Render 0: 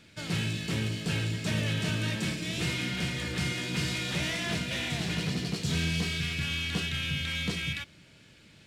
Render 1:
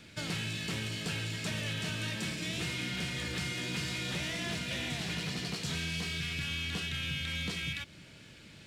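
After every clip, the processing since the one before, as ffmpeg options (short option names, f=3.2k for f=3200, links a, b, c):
-filter_complex "[0:a]acrossover=split=640|2500[a][b][c];[a]acompressor=threshold=-41dB:ratio=4[d];[b]acompressor=threshold=-46dB:ratio=4[e];[c]acompressor=threshold=-43dB:ratio=4[f];[d][e][f]amix=inputs=3:normalize=0,volume=3dB"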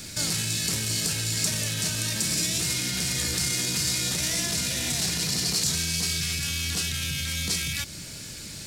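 -af "lowshelf=f=77:g=8.5,alimiter=level_in=8.5dB:limit=-24dB:level=0:latency=1:release=28,volume=-8.5dB,aexciter=amount=5.4:drive=5.5:freq=4.4k,volume=9dB"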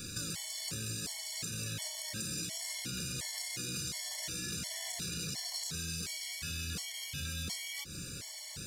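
-af "acompressor=threshold=-31dB:ratio=5,asoftclip=type=tanh:threshold=-21.5dB,afftfilt=real='re*gt(sin(2*PI*1.4*pts/sr)*(1-2*mod(floor(b*sr/1024/580),2)),0)':imag='im*gt(sin(2*PI*1.4*pts/sr)*(1-2*mod(floor(b*sr/1024/580),2)),0)':win_size=1024:overlap=0.75,volume=-2dB"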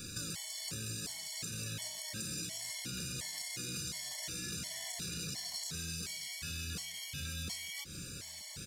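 -af "aecho=1:1:927:0.0841,volume=-2dB"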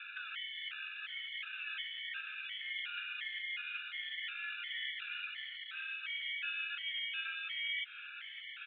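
-af "asoftclip=type=hard:threshold=-32dB,asuperpass=centerf=2100:order=20:qfactor=1,volume=9dB"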